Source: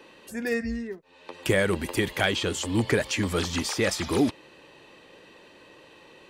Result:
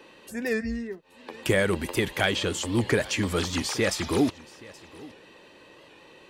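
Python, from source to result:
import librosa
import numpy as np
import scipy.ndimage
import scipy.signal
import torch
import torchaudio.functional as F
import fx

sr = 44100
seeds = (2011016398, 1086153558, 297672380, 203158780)

y = x + 10.0 ** (-21.5 / 20.0) * np.pad(x, (int(825 * sr / 1000.0), 0))[:len(x)]
y = fx.record_warp(y, sr, rpm=78.0, depth_cents=100.0)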